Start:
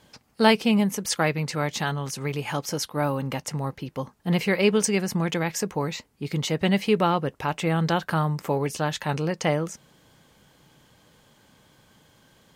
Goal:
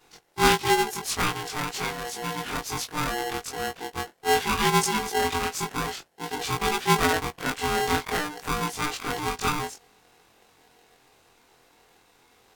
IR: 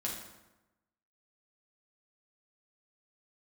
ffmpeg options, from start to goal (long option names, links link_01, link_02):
-af "afftfilt=real='re':imag='-im':win_size=2048:overlap=0.75,aeval=exprs='val(0)*sgn(sin(2*PI*600*n/s))':channel_layout=same,volume=2.5dB"